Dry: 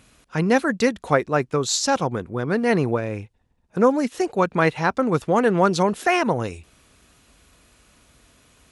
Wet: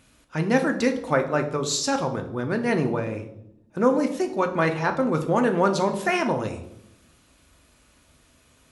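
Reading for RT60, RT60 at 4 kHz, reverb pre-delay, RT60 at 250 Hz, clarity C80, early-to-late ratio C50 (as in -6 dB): 0.80 s, 0.60 s, 3 ms, 1.2 s, 14.0 dB, 11.0 dB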